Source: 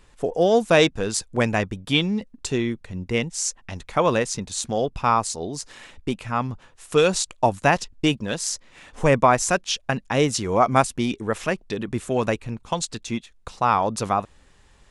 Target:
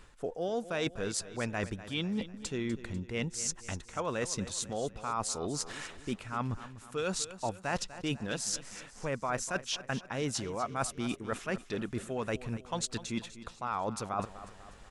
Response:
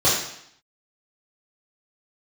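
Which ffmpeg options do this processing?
-af "equalizer=f=1.4k:t=o:w=0.41:g=5.5,areverse,acompressor=threshold=-32dB:ratio=6,areverse,aecho=1:1:247|494|741|988|1235:0.188|0.0923|0.0452|0.0222|0.0109"

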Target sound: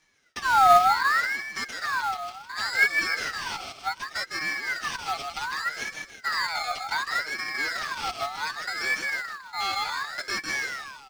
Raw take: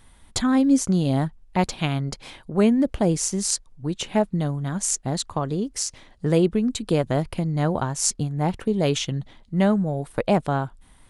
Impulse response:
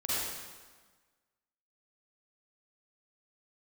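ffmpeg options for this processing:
-filter_complex "[0:a]asplit=2[a][b];[b]aecho=0:1:156|312|468|624|780:0.447|0.179|0.0715|0.0286|0.0114[c];[a][c]amix=inputs=2:normalize=0,acrusher=samples=15:mix=1:aa=0.000001,acrossover=split=300|3600[d][e][f];[f]acontrast=39[g];[d][e][g]amix=inputs=3:normalize=0,equalizer=f=500:t=o:w=1:g=-11,equalizer=f=2k:t=o:w=1:g=-11,equalizer=f=4k:t=o:w=1:g=4,equalizer=f=8k:t=o:w=1:g=8,asplit=2[h][i];[i]highpass=f=720:p=1,volume=22dB,asoftclip=type=tanh:threshold=-2dB[j];[h][j]amix=inputs=2:normalize=0,lowpass=f=4.1k:p=1,volume=-6dB,agate=range=-33dB:threshold=-32dB:ratio=3:detection=peak,acompressor=mode=upward:threshold=-34dB:ratio=2.5,asplit=3[k][l][m];[k]bandpass=f=270:t=q:w=8,volume=0dB[n];[l]bandpass=f=2.29k:t=q:w=8,volume=-6dB[o];[m]bandpass=f=3.01k:t=q:w=8,volume=-9dB[p];[n][o][p]amix=inputs=3:normalize=0,aecho=1:1:6.4:0.96,acrusher=bits=5:mode=log:mix=0:aa=0.000001,equalizer=f=1k:w=1.6:g=15,aeval=exprs='val(0)*sin(2*PI*1500*n/s+1500*0.35/0.67*sin(2*PI*0.67*n/s))':c=same"

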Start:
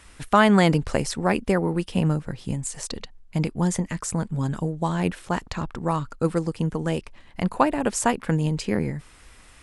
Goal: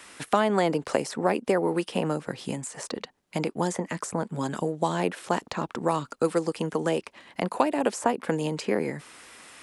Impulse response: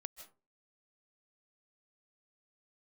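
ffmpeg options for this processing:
-filter_complex "[0:a]highpass=250,acrossover=split=360|980|2000[a][b][c][d];[a]acompressor=threshold=-36dB:ratio=4[e];[b]acompressor=threshold=-27dB:ratio=4[f];[c]acompressor=threshold=-45dB:ratio=4[g];[d]acompressor=threshold=-43dB:ratio=4[h];[e][f][g][h]amix=inputs=4:normalize=0,volume=5dB"

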